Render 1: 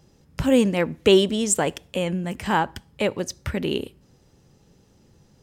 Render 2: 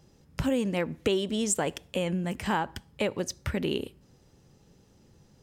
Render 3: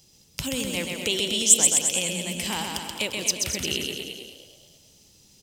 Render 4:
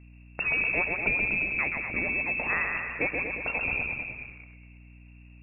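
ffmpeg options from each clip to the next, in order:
ffmpeg -i in.wav -af "acompressor=threshold=-21dB:ratio=6,volume=-2.5dB" out.wav
ffmpeg -i in.wav -filter_complex "[0:a]asplit=2[link_01][link_02];[link_02]aecho=0:1:130|247|352.3|447.1|532.4:0.631|0.398|0.251|0.158|0.1[link_03];[link_01][link_03]amix=inputs=2:normalize=0,aexciter=amount=6.5:drive=4.4:freq=2300,asplit=2[link_04][link_05];[link_05]asplit=4[link_06][link_07][link_08][link_09];[link_06]adelay=214,afreqshift=59,volume=-12dB[link_10];[link_07]adelay=428,afreqshift=118,volume=-19.1dB[link_11];[link_08]adelay=642,afreqshift=177,volume=-26.3dB[link_12];[link_09]adelay=856,afreqshift=236,volume=-33.4dB[link_13];[link_10][link_11][link_12][link_13]amix=inputs=4:normalize=0[link_14];[link_04][link_14]amix=inputs=2:normalize=0,volume=-5.5dB" out.wav
ffmpeg -i in.wav -filter_complex "[0:a]asplit=2[link_01][link_02];[link_02]acrusher=bits=6:mix=0:aa=0.000001,volume=-6dB[link_03];[link_01][link_03]amix=inputs=2:normalize=0,lowpass=frequency=2400:width_type=q:width=0.5098,lowpass=frequency=2400:width_type=q:width=0.6013,lowpass=frequency=2400:width_type=q:width=0.9,lowpass=frequency=2400:width_type=q:width=2.563,afreqshift=-2800,aeval=exprs='val(0)+0.00355*(sin(2*PI*60*n/s)+sin(2*PI*2*60*n/s)/2+sin(2*PI*3*60*n/s)/3+sin(2*PI*4*60*n/s)/4+sin(2*PI*5*60*n/s)/5)':channel_layout=same" out.wav

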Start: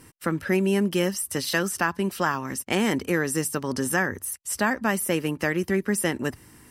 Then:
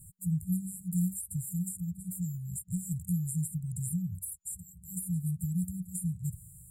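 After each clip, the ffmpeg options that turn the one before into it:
ffmpeg -i in.wav -filter_complex "[0:a]afftfilt=real='re*(1-between(b*sr/4096,190,7000))':imag='im*(1-between(b*sr/4096,190,7000))':win_size=4096:overlap=0.75,acrossover=split=430|810|3000[link_01][link_02][link_03][link_04];[link_04]acompressor=threshold=-40dB:ratio=6[link_05];[link_01][link_02][link_03][link_05]amix=inputs=4:normalize=0,volume=2dB" out.wav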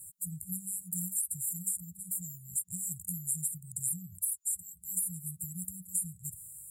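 ffmpeg -i in.wav -af "bass=frequency=250:gain=-7,treble=frequency=4000:gain=14,volume=-6.5dB" out.wav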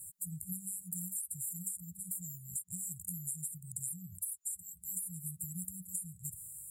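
ffmpeg -i in.wav -af "acompressor=threshold=-36dB:ratio=6" out.wav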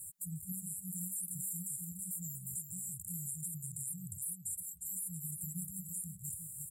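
ffmpeg -i in.wav -af "aecho=1:1:355:0.422,alimiter=level_in=6.5dB:limit=-24dB:level=0:latency=1:release=21,volume=-6.5dB,volume=1dB" out.wav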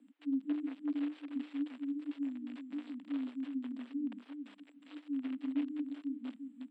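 ffmpeg -i in.wav -af "asoftclip=type=hard:threshold=-35.5dB,highpass=frequency=150:width_type=q:width=0.5412,highpass=frequency=150:width_type=q:width=1.307,lowpass=frequency=3200:width_type=q:width=0.5176,lowpass=frequency=3200:width_type=q:width=0.7071,lowpass=frequency=3200:width_type=q:width=1.932,afreqshift=110,volume=11.5dB" out.wav

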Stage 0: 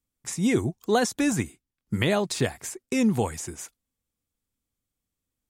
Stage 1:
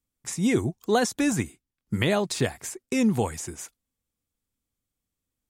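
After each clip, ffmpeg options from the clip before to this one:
ffmpeg -i in.wav -af anull out.wav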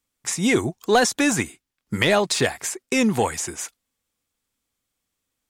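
ffmpeg -i in.wav -filter_complex "[0:a]asplit=2[link_01][link_02];[link_02]highpass=frequency=720:poles=1,volume=11dB,asoftclip=type=tanh:threshold=-9.5dB[link_03];[link_01][link_03]amix=inputs=2:normalize=0,lowpass=frequency=7200:poles=1,volume=-6dB,volume=3.5dB" out.wav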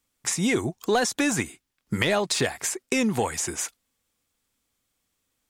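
ffmpeg -i in.wav -af "acompressor=threshold=-29dB:ratio=2,volume=3dB" out.wav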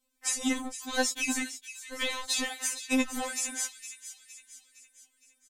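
ffmpeg -i in.wav -filter_complex "[0:a]acrossover=split=1900[link_01][link_02];[link_01]volume=30dB,asoftclip=hard,volume=-30dB[link_03];[link_02]aecho=1:1:462|924|1386|1848|2310:0.266|0.13|0.0639|0.0313|0.0153[link_04];[link_03][link_04]amix=inputs=2:normalize=0,afftfilt=real='re*3.46*eq(mod(b,12),0)':imag='im*3.46*eq(mod(b,12),0)':win_size=2048:overlap=0.75" out.wav

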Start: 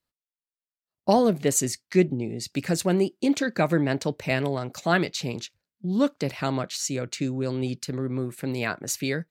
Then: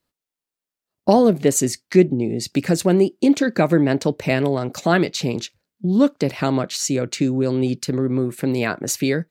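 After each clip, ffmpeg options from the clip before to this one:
ffmpeg -i in.wav -filter_complex "[0:a]equalizer=frequency=320:width=0.63:gain=5.5,asplit=2[link_01][link_02];[link_02]acompressor=threshold=-26dB:ratio=6,volume=0.5dB[link_03];[link_01][link_03]amix=inputs=2:normalize=0" out.wav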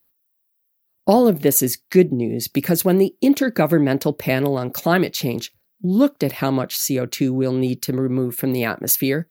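ffmpeg -i in.wav -af "aexciter=amount=6.3:drive=8.5:freq=11000" out.wav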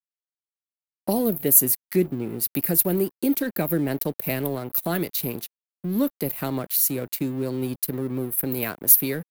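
ffmpeg -i in.wav -filter_complex "[0:a]aeval=exprs='sgn(val(0))*max(abs(val(0))-0.0158,0)':channel_layout=same,acrossover=split=400|3000[link_01][link_02][link_03];[link_02]acompressor=threshold=-20dB:ratio=6[link_04];[link_01][link_04][link_03]amix=inputs=3:normalize=0,aexciter=amount=3.3:drive=8.8:freq=8900,volume=-6.5dB" out.wav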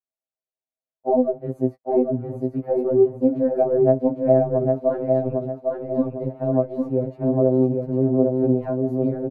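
ffmpeg -i in.wav -af "lowpass=frequency=650:width_type=q:width=4.9,aecho=1:1:804|1608|2412|3216|4020:0.668|0.241|0.0866|0.0312|0.0112,afftfilt=real='re*2.45*eq(mod(b,6),0)':imag='im*2.45*eq(mod(b,6),0)':win_size=2048:overlap=0.75,volume=1dB" out.wav

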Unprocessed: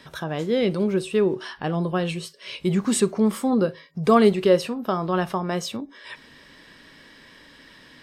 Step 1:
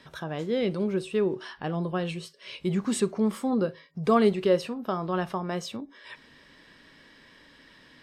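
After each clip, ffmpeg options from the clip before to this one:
ffmpeg -i in.wav -af "highshelf=frequency=8500:gain=-6.5,volume=-5dB" out.wav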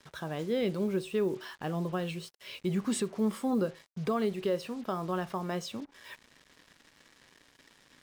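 ffmpeg -i in.wav -af "alimiter=limit=-18dB:level=0:latency=1:release=272,acrusher=bits=7:mix=0:aa=0.5,volume=-3dB" out.wav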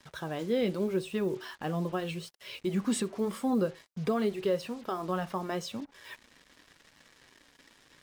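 ffmpeg -i in.wav -af "flanger=delay=1:depth=3.3:regen=-56:speed=0.86:shape=triangular,volume=5dB" out.wav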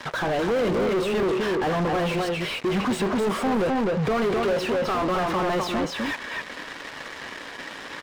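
ffmpeg -i in.wav -filter_complex "[0:a]asplit=2[link_01][link_02];[link_02]adelay=256.6,volume=-6dB,highshelf=frequency=4000:gain=-5.77[link_03];[link_01][link_03]amix=inputs=2:normalize=0,asplit=2[link_04][link_05];[link_05]highpass=frequency=720:poles=1,volume=37dB,asoftclip=type=tanh:threshold=-16dB[link_06];[link_04][link_06]amix=inputs=2:normalize=0,lowpass=frequency=1400:poles=1,volume=-6dB" out.wav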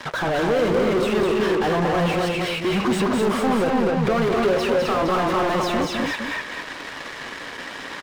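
ffmpeg -i in.wav -af "aecho=1:1:205:0.596,volume=2dB" out.wav

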